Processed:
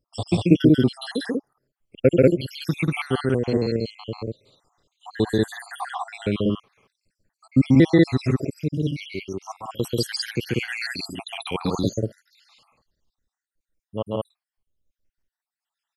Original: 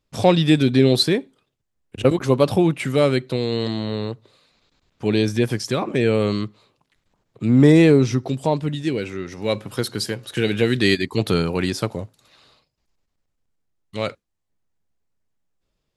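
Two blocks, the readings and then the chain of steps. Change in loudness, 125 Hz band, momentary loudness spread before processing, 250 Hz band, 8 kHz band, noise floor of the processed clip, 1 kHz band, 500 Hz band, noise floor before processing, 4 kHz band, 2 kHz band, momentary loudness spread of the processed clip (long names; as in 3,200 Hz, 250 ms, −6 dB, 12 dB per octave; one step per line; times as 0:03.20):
−3.5 dB, −3.0 dB, 13 LU, −2.5 dB, −5.5 dB, below −85 dBFS, −5.5 dB, −4.5 dB, −76 dBFS, −6.0 dB, −4.0 dB, 16 LU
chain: time-frequency cells dropped at random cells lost 84%
loudspeakers that aren't time-aligned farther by 47 metres −1 dB, 65 metres 0 dB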